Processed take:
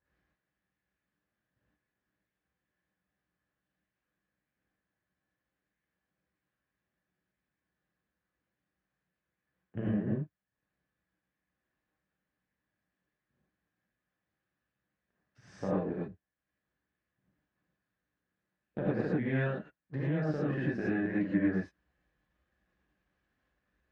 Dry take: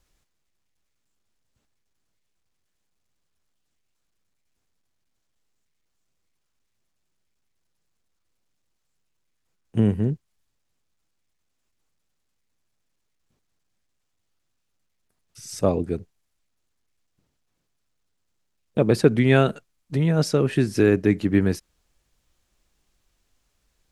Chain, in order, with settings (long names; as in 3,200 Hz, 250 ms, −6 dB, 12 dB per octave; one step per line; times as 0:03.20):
gain on one half-wave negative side −7 dB
high-pass filter 94 Hz 12 dB per octave
parametric band 1,700 Hz +13 dB 0.35 octaves
downward compressor 3 to 1, threshold −28 dBFS, peak gain reduction 12.5 dB
head-to-tape spacing loss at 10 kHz 36 dB
reverb whose tail is shaped and stops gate 130 ms rising, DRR −6.5 dB
level −7 dB